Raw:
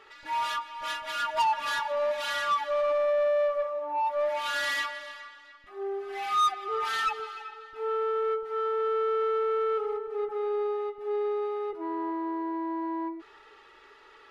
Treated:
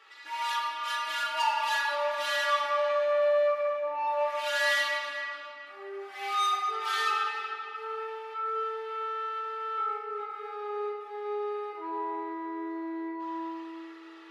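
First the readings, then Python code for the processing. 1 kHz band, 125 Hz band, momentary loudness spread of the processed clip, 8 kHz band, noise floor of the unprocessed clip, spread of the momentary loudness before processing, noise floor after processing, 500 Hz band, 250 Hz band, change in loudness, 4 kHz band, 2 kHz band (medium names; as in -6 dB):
-0.5 dB, no reading, 12 LU, +1.5 dB, -54 dBFS, 10 LU, -47 dBFS, -3.0 dB, -3.0 dB, -1.0 dB, +2.0 dB, +3.0 dB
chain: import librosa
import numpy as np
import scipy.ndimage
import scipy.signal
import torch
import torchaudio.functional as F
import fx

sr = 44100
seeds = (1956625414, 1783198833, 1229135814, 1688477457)

y = scipy.signal.sosfilt(scipy.signal.cheby1(10, 1.0, 200.0, 'highpass', fs=sr, output='sos'), x)
y = fx.peak_eq(y, sr, hz=330.0, db=-12.0, octaves=3.0)
y = fx.room_shoebox(y, sr, seeds[0], volume_m3=150.0, walls='hard', distance_m=0.68)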